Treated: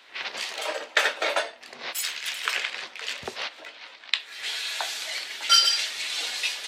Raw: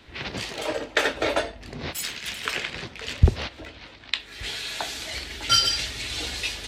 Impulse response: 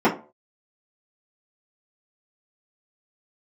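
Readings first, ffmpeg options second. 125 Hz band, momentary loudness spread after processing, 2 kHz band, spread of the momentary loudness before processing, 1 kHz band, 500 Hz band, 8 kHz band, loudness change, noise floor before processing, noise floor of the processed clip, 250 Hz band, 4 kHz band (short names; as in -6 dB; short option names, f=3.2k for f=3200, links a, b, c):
-33.0 dB, 15 LU, +1.5 dB, 13 LU, +0.5 dB, -4.5 dB, +1.5 dB, +0.5 dB, -47 dBFS, -48 dBFS, -15.0 dB, +1.5 dB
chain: -filter_complex "[0:a]highpass=750,asplit=2[a][b];[1:a]atrim=start_sample=2205,asetrate=48510,aresample=44100[c];[b][c]afir=irnorm=-1:irlink=0,volume=-36.5dB[d];[a][d]amix=inputs=2:normalize=0,volume=1.5dB"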